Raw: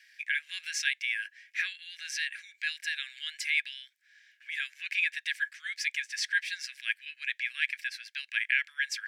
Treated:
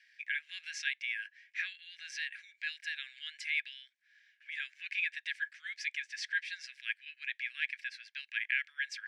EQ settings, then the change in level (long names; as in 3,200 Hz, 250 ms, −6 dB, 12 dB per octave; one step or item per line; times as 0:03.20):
high-pass filter 1,400 Hz 12 dB per octave
head-to-tape spacing loss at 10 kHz 24 dB
high-shelf EQ 6,300 Hz +9 dB
0.0 dB